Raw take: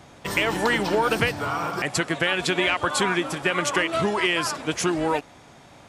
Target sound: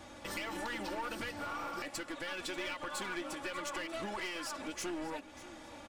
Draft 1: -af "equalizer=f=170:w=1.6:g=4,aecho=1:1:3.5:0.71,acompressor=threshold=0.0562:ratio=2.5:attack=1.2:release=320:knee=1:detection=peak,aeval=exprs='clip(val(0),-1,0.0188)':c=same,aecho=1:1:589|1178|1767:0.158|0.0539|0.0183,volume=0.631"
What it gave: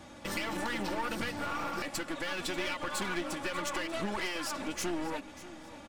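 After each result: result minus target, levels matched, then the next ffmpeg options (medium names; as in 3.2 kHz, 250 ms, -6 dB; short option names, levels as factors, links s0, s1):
compression: peak gain reduction -5.5 dB; 125 Hz band +4.0 dB
-af "equalizer=f=170:w=1.6:g=4,aecho=1:1:3.5:0.71,acompressor=threshold=0.0188:ratio=2.5:attack=1.2:release=320:knee=1:detection=peak,aeval=exprs='clip(val(0),-1,0.0188)':c=same,aecho=1:1:589|1178|1767:0.158|0.0539|0.0183,volume=0.631"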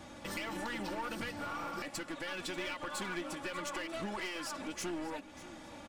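125 Hz band +4.0 dB
-af "equalizer=f=170:w=1.6:g=-3.5,aecho=1:1:3.5:0.71,acompressor=threshold=0.0188:ratio=2.5:attack=1.2:release=320:knee=1:detection=peak,aeval=exprs='clip(val(0),-1,0.0188)':c=same,aecho=1:1:589|1178|1767:0.158|0.0539|0.0183,volume=0.631"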